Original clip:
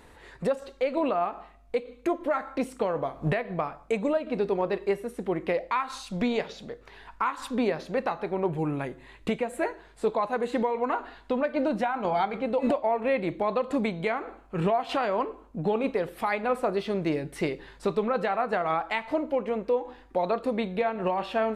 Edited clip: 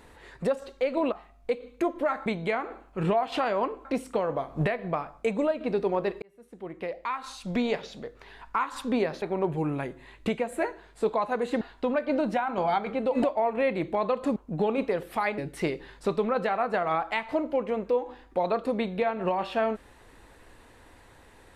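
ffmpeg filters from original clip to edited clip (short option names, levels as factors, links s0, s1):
-filter_complex "[0:a]asplit=9[s0][s1][s2][s3][s4][s5][s6][s7][s8];[s0]atrim=end=1.122[s9];[s1]atrim=start=1.368:end=2.512[s10];[s2]atrim=start=13.828:end=15.422[s11];[s3]atrim=start=2.508:end=4.88,asetpts=PTS-STARTPTS,afade=t=out:st=2.368:d=0.004:c=hsin[s12];[s4]atrim=start=4.88:end=7.882,asetpts=PTS-STARTPTS,afade=t=in:d=1.43[s13];[s5]atrim=start=8.228:end=10.622[s14];[s6]atrim=start=11.078:end=13.832[s15];[s7]atrim=start=15.418:end=16.442[s16];[s8]atrim=start=17.168[s17];[s9][s10]acrossfade=d=0.004:c1=hsin:c2=hsin[s18];[s18][s11]acrossfade=d=0.004:c1=hsin:c2=hsin[s19];[s12][s13]concat=n=2:v=0:a=1[s20];[s19][s20]acrossfade=d=0.004:c1=hsin:c2=hsin[s21];[s21][s14]acrossfade=d=0.004:c1=hsin:c2=hsin[s22];[s22][s15]acrossfade=d=0.004:c1=hsin:c2=hsin[s23];[s23][s16]acrossfade=d=0.004:c1=hsin:c2=hsin[s24];[s24][s17]acrossfade=d=0.004:c1=hsin:c2=hsin"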